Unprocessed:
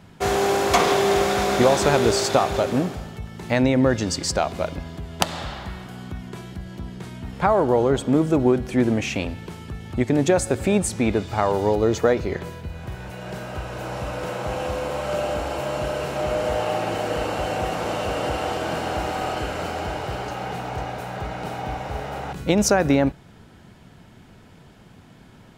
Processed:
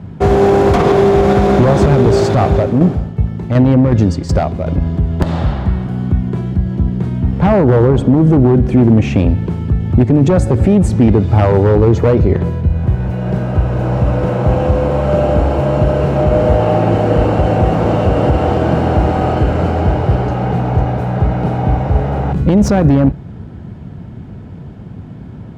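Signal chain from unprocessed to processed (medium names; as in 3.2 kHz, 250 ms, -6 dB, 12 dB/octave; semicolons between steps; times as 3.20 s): one-sided wavefolder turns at -15 dBFS; high-pass 79 Hz 12 dB/octave; tilt EQ -4.5 dB/octave; 2.44–4.82 s: tremolo saw down 2.7 Hz, depth 65%; loudness maximiser +8.5 dB; trim -1 dB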